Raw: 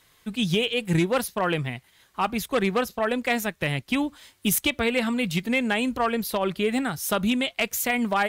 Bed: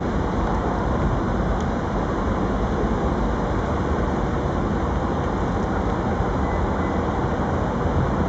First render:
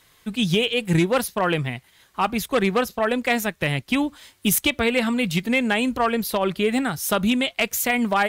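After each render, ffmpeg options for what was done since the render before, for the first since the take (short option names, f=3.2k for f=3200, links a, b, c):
-af "volume=3dB"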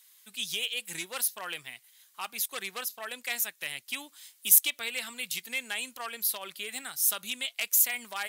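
-af "highpass=62,aderivative"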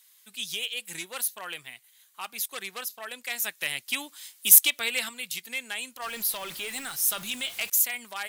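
-filter_complex "[0:a]asettb=1/sr,asplit=3[a][b][c];[a]atrim=end=1.064[d];[b]atrim=start=1.06:end=2.24,asetpts=PTS-STARTPTS,afade=t=in:d=0.004:c=qsin,afade=t=out:st=1.176:d=0.004:c=qsin,equalizer=f=5.2k:t=o:w=0.2:g=-6[e];[c]atrim=start=2.236[f];[d][e]acrossfade=d=0.004:c1=hsin:c2=qsin[g];[g][f]acrossfade=d=0.004:c1=qsin:c2=hsin,asettb=1/sr,asplit=3[h][i][j];[h]atrim=end=3.444[k];[i]atrim=start=3.44:end=5.09,asetpts=PTS-STARTPTS,afade=t=in:d=0.004:c=qsin,afade=t=out:st=1.646:d=0.004:c=qsin,acontrast=47[l];[j]atrim=start=5.086[m];[k][l]acrossfade=d=0.004:c1=hsin:c2=qsin[n];[n][m]acrossfade=d=0.004:c1=qsin:c2=hsin,asettb=1/sr,asplit=3[o][p][q];[o]atrim=end=6.024[r];[p]atrim=start=6.02:end=7.7,asetpts=PTS-STARTPTS,afade=t=in:d=0.004:c=qsin,afade=t=out:st=1.676:d=0.004:c=qsin,aeval=exprs='val(0)+0.5*0.0141*sgn(val(0))':c=same[s];[q]atrim=start=7.696[t];[r][s]acrossfade=d=0.004:c1=hsin:c2=qsin[u];[u][t]acrossfade=d=0.004:c1=qsin:c2=hsin"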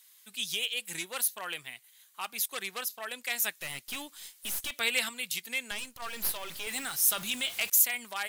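-filter_complex "[0:a]asettb=1/sr,asplit=3[a][b][c];[a]atrim=end=3.584[d];[b]atrim=start=3.58:end=4.71,asetpts=PTS-STARTPTS,afade=t=in:d=0.004:c=qsin,afade=t=out:st=1.126:d=0.004:c=qsin,aeval=exprs='(tanh(44.7*val(0)+0.5)-tanh(0.5))/44.7':c=same[e];[c]atrim=start=4.706[f];[d][e]acrossfade=d=0.004:c1=hsin:c2=qsin[g];[g][f]acrossfade=d=0.004:c1=qsin:c2=hsin,asettb=1/sr,asplit=3[h][i][j];[h]atrim=end=5.714[k];[i]atrim=start=5.71:end=6.67,asetpts=PTS-STARTPTS,afade=t=in:d=0.004:c=qsin,afade=t=out:st=0.956:d=0.004:c=qsin,aeval=exprs='if(lt(val(0),0),0.251*val(0),val(0))':c=same[l];[j]atrim=start=6.666[m];[k][l]acrossfade=d=0.004:c1=hsin:c2=qsin[n];[n][m]acrossfade=d=0.004:c1=qsin:c2=hsin"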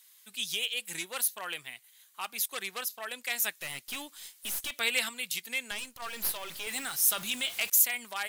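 -af "lowshelf=f=160:g=-3.5"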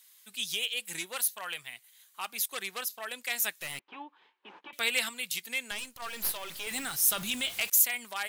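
-filter_complex "[0:a]asettb=1/sr,asplit=3[a][b][c];[a]atrim=end=1.164[d];[b]atrim=start=1.16:end=1.73,asetpts=PTS-STARTPTS,afade=t=in:d=0.004:c=qsin,afade=t=out:st=0.566:d=0.004:c=qsin,equalizer=f=310:w=1.4:g=-7.5[e];[c]atrim=start=1.726[f];[d][e]acrossfade=d=0.004:c1=hsin:c2=qsin[g];[g][f]acrossfade=d=0.004:c1=qsin:c2=hsin,asettb=1/sr,asplit=3[h][i][j];[h]atrim=end=3.794[k];[i]atrim=start=3.79:end=4.73,asetpts=PTS-STARTPTS,afade=t=in:d=0.004:c=qsin,afade=t=out:st=0.936:d=0.004:c=qsin,highpass=f=230:w=0.5412,highpass=f=230:w=1.3066,equalizer=f=240:t=q:w=4:g=-7,equalizer=f=380:t=q:w=4:g=3,equalizer=f=630:t=q:w=4:g=-9,equalizer=f=900:t=q:w=4:g=8,equalizer=f=1.4k:t=q:w=4:g=-5,equalizer=f=2k:t=q:w=4:g=-9,lowpass=f=2.1k:w=0.5412,lowpass=f=2.1k:w=1.3066[l];[j]atrim=start=4.726[m];[k][l]acrossfade=d=0.004:c1=hsin:c2=qsin[n];[n][m]acrossfade=d=0.004:c1=qsin:c2=hsin,asettb=1/sr,asplit=3[o][p][q];[o]atrim=end=6.714[r];[p]atrim=start=6.71:end=7.61,asetpts=PTS-STARTPTS,afade=t=in:d=0.004:c=qsin,afade=t=out:st=0.896:d=0.004:c=qsin,lowshelf=f=220:g=9.5[s];[q]atrim=start=7.606[t];[r][s]acrossfade=d=0.004:c1=hsin:c2=qsin[u];[u][t]acrossfade=d=0.004:c1=qsin:c2=hsin"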